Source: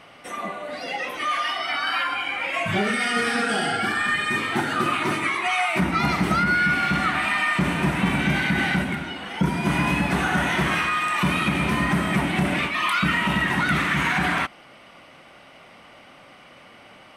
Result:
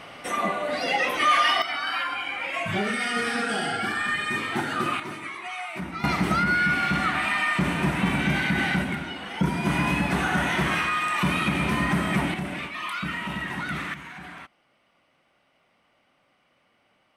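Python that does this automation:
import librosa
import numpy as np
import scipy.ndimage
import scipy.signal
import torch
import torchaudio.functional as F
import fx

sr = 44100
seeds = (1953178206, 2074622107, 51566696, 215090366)

y = fx.gain(x, sr, db=fx.steps((0.0, 5.0), (1.62, -3.5), (5.0, -11.5), (6.04, -2.0), (12.34, -9.0), (13.94, -18.5)))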